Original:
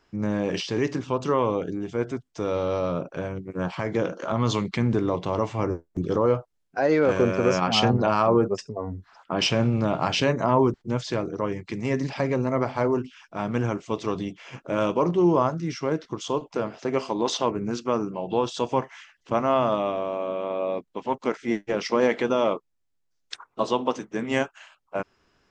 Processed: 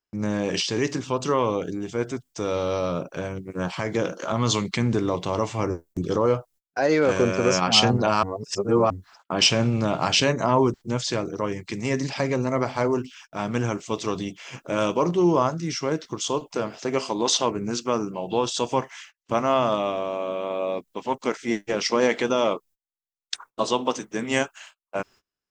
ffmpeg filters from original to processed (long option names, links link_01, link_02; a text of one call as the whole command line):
ffmpeg -i in.wav -filter_complex "[0:a]asplit=3[link_01][link_02][link_03];[link_01]atrim=end=8.232[link_04];[link_02]atrim=start=8.228:end=8.902,asetpts=PTS-STARTPTS,areverse[link_05];[link_03]atrim=start=8.898[link_06];[link_04][link_05]acrossfade=duration=0.004:curve1=hsin:curve2=hsin[link_07];[link_07][link_06]acrossfade=duration=0.004:curve1=hsin:curve2=hsin,agate=range=-28dB:threshold=-49dB:ratio=16:detection=peak,aemphasis=mode=production:type=75kf" out.wav